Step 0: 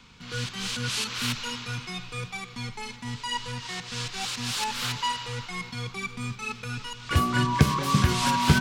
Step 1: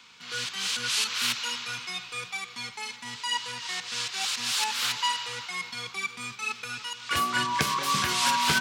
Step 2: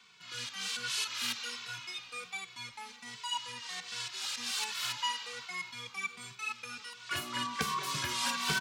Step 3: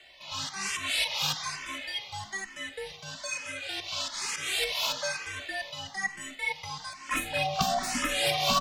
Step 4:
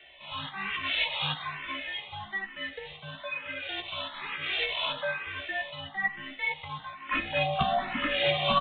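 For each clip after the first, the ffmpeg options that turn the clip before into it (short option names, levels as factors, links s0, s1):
-af "highpass=f=1200:p=1,volume=1.5"
-filter_complex "[0:a]asplit=2[s0][s1];[s1]adelay=2.2,afreqshift=-1.3[s2];[s0][s2]amix=inputs=2:normalize=1,volume=0.596"
-filter_complex "[0:a]afreqshift=-390,asplit=2[s0][s1];[s1]afreqshift=1.1[s2];[s0][s2]amix=inputs=2:normalize=1,volume=2.66"
-filter_complex "[0:a]asplit=2[s0][s1];[s1]adelay=14,volume=0.562[s2];[s0][s2]amix=inputs=2:normalize=0,aresample=8000,aresample=44100"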